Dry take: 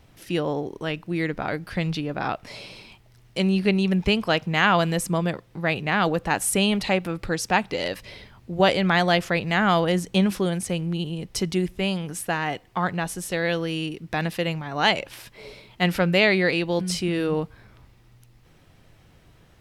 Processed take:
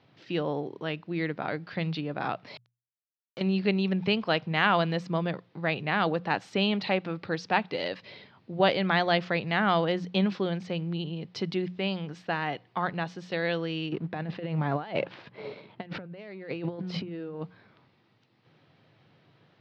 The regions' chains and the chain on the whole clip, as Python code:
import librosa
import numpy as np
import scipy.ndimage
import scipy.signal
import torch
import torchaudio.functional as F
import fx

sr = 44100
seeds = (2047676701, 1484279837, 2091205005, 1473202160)

y = fx.chain(x, sr, fx.lowpass(hz=1200.0, slope=6),
    fx.level_steps(step_db=16),
    fx.quant_dither(seeds[0], bits=6, dither='none'), at=(2.57, 3.41))
y = fx.chain(y, sr, fx.lowpass(hz=1100.0, slope=6),
    fx.leveller(passes=1),
    fx.over_compress(threshold_db=-27.0, ratio=-0.5), at=(13.92, 17.42))
y = scipy.signal.sosfilt(scipy.signal.ellip(3, 1.0, 40, [120.0, 4400.0], 'bandpass', fs=sr, output='sos'), y)
y = fx.hum_notches(y, sr, base_hz=60, count=3)
y = y * 10.0 ** (-4.0 / 20.0)